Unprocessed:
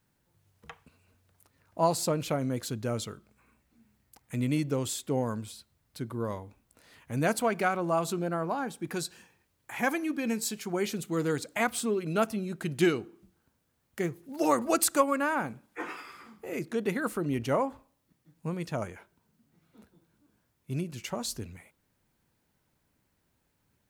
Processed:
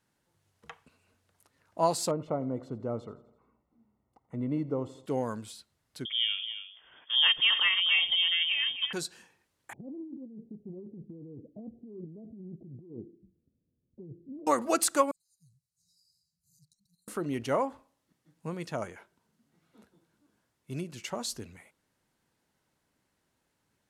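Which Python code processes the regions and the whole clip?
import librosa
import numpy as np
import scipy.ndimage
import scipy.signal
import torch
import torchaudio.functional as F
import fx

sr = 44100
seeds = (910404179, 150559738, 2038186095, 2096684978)

y = fx.chain(x, sr, fx.savgol(points=65),
    fx.echo_feedback(ms=84, feedback_pct=59, wet_db=-19), at=(2.11, 5.06))
y = fx.chain(y, sr, fx.peak_eq(hz=190.0, db=6.5, octaves=1.5),
    fx.echo_single(ms=269, db=-10.0),
    fx.freq_invert(carrier_hz=3400), at=(6.05, 8.93))
y = fx.chain(y, sr, fx.gaussian_blur(sigma=24.0),
    fx.over_compress(threshold_db=-41.0, ratio=-1.0), at=(9.73, 14.47))
y = fx.chain(y, sr, fx.tone_stack(knobs='6-0-2'),
    fx.over_compress(threshold_db=-54.0, ratio=-0.5),
    fx.brickwall_bandstop(low_hz=180.0, high_hz=3800.0), at=(15.11, 17.08))
y = scipy.signal.sosfilt(scipy.signal.butter(2, 11000.0, 'lowpass', fs=sr, output='sos'), y)
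y = fx.low_shelf(y, sr, hz=150.0, db=-10.0)
y = fx.notch(y, sr, hz=2400.0, q=25.0)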